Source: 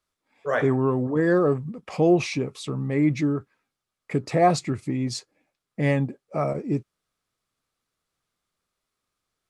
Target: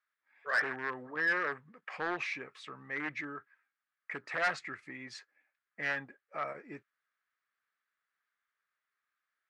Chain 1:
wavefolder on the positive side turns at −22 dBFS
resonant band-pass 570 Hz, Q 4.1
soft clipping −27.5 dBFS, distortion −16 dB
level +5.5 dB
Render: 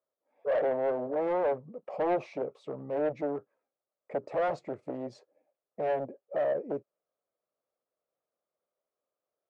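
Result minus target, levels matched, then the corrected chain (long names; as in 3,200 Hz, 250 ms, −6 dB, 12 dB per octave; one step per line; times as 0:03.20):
2,000 Hz band −16.5 dB; wavefolder on the positive side: distortion +12 dB
wavefolder on the positive side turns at −15 dBFS
resonant band-pass 1,700 Hz, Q 4.1
soft clipping −27.5 dBFS, distortion −14 dB
level +5.5 dB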